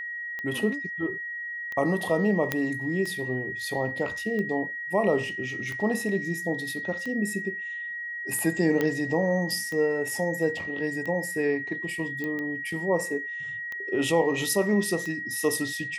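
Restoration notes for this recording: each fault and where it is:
tick 45 rpm -22 dBFS
whine 1.9 kHz -32 dBFS
2.52 s: pop -10 dBFS
8.81 s: pop -13 dBFS
12.24 s: pop -20 dBFS

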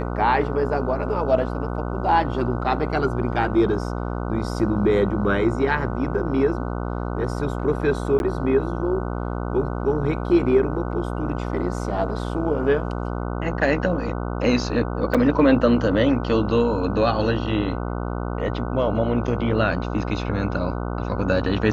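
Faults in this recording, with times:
buzz 60 Hz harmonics 25 -27 dBFS
8.19–8.20 s: dropout 11 ms
15.14–15.15 s: dropout 6 ms

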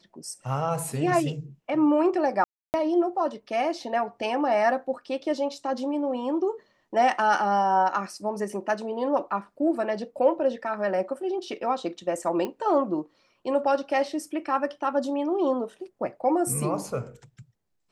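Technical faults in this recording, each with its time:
2.44–2.74 s: dropout 299 ms
12.45 s: pop -18 dBFS

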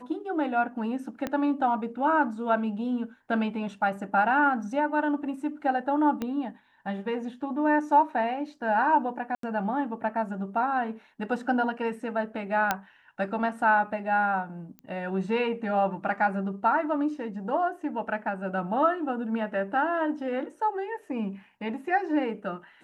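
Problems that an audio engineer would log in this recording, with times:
1.27 s: pop -16 dBFS
6.22 s: pop -18 dBFS
9.35–9.43 s: dropout 83 ms
12.71 s: pop -9 dBFS
14.79 s: pop -29 dBFS

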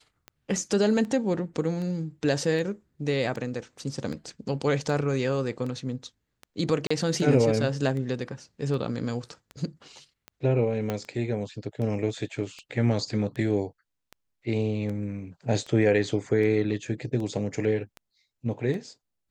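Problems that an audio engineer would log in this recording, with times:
tick 78 rpm -25 dBFS
6.87–6.91 s: dropout 35 ms
10.90 s: pop -15 dBFS

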